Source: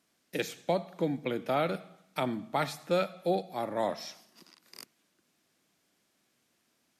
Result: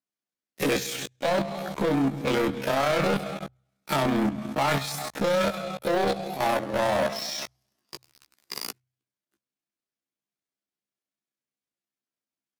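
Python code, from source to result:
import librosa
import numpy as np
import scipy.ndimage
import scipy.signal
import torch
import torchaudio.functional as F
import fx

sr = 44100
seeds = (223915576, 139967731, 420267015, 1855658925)

y = fx.level_steps(x, sr, step_db=18)
y = fx.leveller(y, sr, passes=5)
y = fx.hum_notches(y, sr, base_hz=60, count=2)
y = fx.stretch_grains(y, sr, factor=1.8, grain_ms=66.0)
y = y * librosa.db_to_amplitude(4.5)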